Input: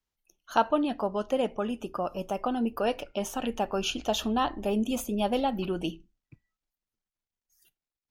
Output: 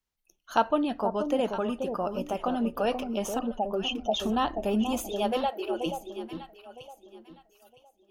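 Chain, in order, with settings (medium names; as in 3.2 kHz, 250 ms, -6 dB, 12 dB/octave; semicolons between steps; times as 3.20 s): 3.39–4.20 s: spectral contrast enhancement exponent 2.3; 5.01–5.86 s: brick-wall FIR high-pass 300 Hz; echo whose repeats swap between lows and highs 481 ms, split 890 Hz, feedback 50%, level -6 dB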